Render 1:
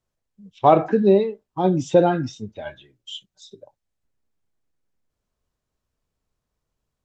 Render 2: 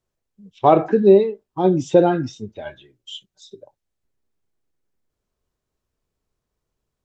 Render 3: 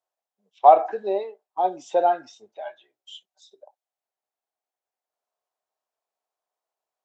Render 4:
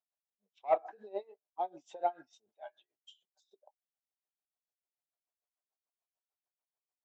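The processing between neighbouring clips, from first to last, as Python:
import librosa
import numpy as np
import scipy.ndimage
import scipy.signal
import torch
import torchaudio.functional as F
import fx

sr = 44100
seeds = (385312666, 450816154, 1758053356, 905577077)

y1 = fx.peak_eq(x, sr, hz=380.0, db=5.0, octaves=0.52)
y2 = fx.highpass_res(y1, sr, hz=720.0, q=4.0)
y2 = y2 * 10.0 ** (-8.0 / 20.0)
y3 = 10.0 ** (-5.5 / 20.0) * np.tanh(y2 / 10.0 ** (-5.5 / 20.0))
y3 = y3 * 10.0 ** (-23 * (0.5 - 0.5 * np.cos(2.0 * np.pi * 6.8 * np.arange(len(y3)) / sr)) / 20.0)
y3 = y3 * 10.0 ** (-9.0 / 20.0)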